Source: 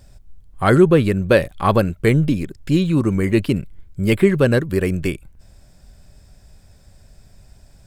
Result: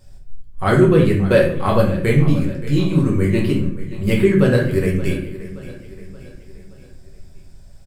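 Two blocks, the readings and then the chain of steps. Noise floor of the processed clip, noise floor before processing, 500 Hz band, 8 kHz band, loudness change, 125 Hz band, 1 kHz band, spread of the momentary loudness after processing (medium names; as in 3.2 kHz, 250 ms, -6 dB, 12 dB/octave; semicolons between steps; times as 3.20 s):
-42 dBFS, -50 dBFS, +0.5 dB, -1.5 dB, +0.5 dB, +2.0 dB, -1.5 dB, 13 LU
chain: on a send: feedback delay 575 ms, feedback 49%, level -16 dB; on the sum: simulated room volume 68 m³, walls mixed, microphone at 1 m; trim -5 dB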